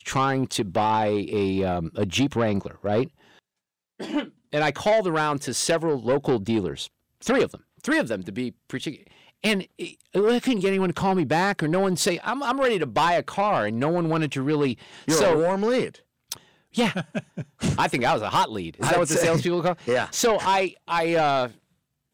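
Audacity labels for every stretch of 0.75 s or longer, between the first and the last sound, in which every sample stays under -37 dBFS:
3.070000	4.000000	silence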